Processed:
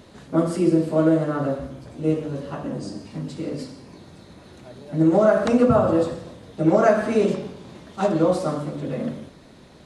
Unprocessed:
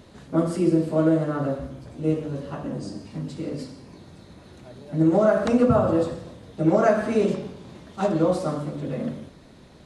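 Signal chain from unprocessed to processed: low shelf 140 Hz -4.5 dB; gain +2.5 dB

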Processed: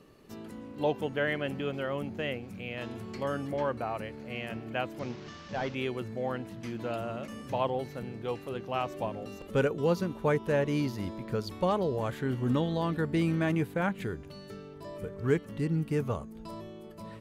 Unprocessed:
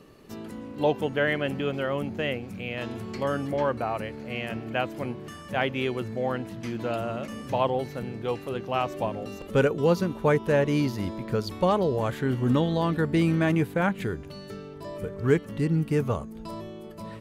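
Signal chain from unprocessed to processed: 4.99–5.75 delta modulation 32 kbps, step -38 dBFS; gain -5 dB

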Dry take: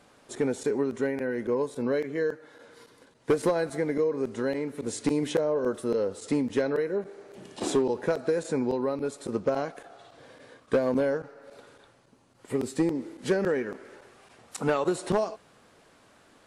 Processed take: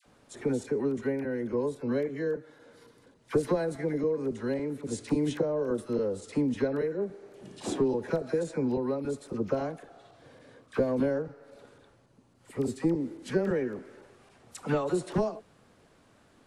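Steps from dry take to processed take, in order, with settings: low shelf 300 Hz +9 dB; dispersion lows, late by 60 ms, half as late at 970 Hz; gain -5.5 dB

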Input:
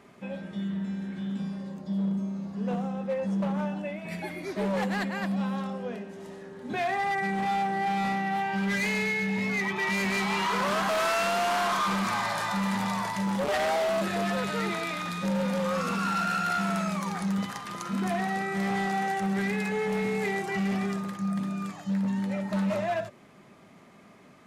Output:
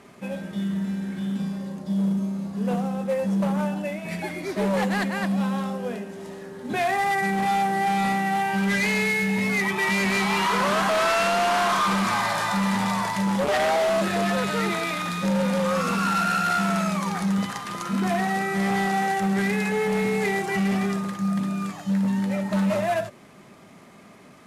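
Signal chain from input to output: CVSD 64 kbps; gain +5 dB

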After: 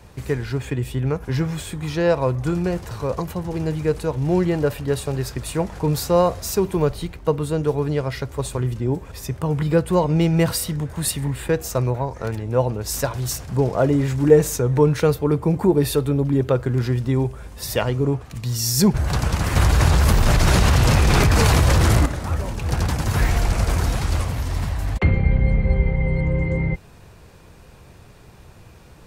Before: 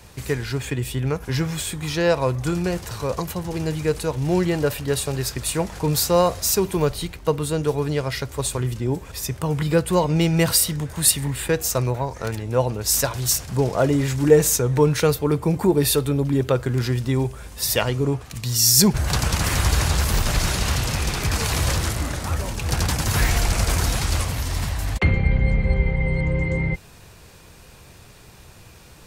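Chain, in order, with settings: high shelf 2100 Hz -9.5 dB; 19.56–22.06 fast leveller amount 100%; gain +1.5 dB

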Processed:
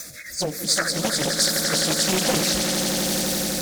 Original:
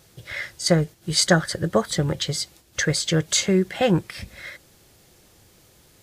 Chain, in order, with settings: zero-crossing step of -22.5 dBFS; weighting filter D; spectral noise reduction 21 dB; high shelf 8700 Hz +11.5 dB; power-law curve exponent 0.7; compressor 2.5:1, threshold -12 dBFS, peak gain reduction 8 dB; rotary speaker horn 0.7 Hz; auto swell 0.11 s; plain phase-vocoder stretch 0.6×; fixed phaser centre 600 Hz, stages 8; on a send: swelling echo 86 ms, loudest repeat 8, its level -9.5 dB; on the sum: Doppler distortion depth 0.84 ms

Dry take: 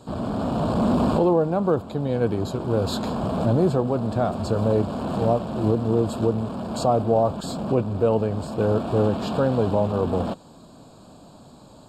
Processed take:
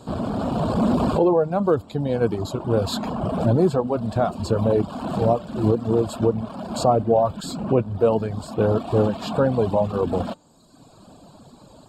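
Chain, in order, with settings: de-hum 297.1 Hz, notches 30; reverb removal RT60 1.2 s; gain +3 dB

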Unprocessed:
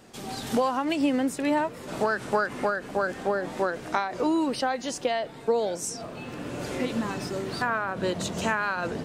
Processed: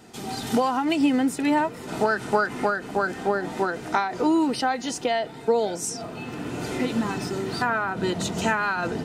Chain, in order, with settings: notch comb 560 Hz; gain +4 dB

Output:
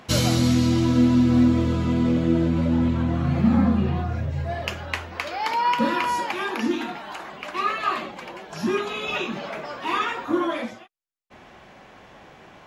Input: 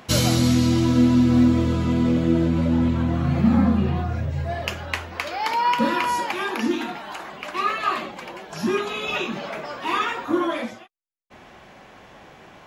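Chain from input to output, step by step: high shelf 9100 Hz -5 dB; gain -1 dB

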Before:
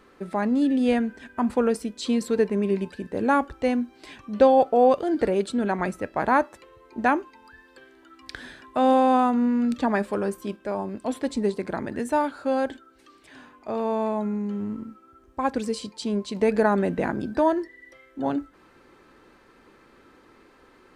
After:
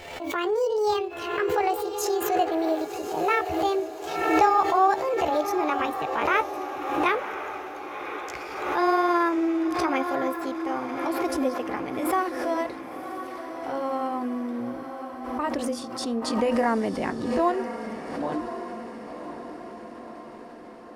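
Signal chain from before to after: gliding pitch shift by +9.5 st ending unshifted; diffused feedback echo 1.051 s, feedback 58%, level -9 dB; backwards sustainer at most 48 dB/s; gain -2 dB

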